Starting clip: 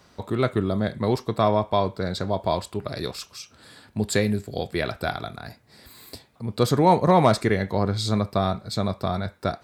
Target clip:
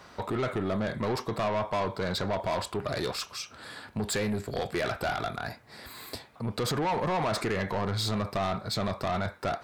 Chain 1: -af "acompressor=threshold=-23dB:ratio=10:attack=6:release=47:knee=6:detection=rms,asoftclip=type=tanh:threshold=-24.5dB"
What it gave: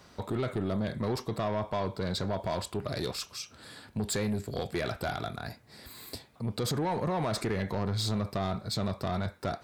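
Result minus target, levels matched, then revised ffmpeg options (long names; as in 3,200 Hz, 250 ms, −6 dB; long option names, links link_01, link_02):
1,000 Hz band −2.5 dB
-af "acompressor=threshold=-23dB:ratio=10:attack=6:release=47:knee=6:detection=rms,equalizer=frequency=1200:width=0.43:gain=8,asoftclip=type=tanh:threshold=-24.5dB"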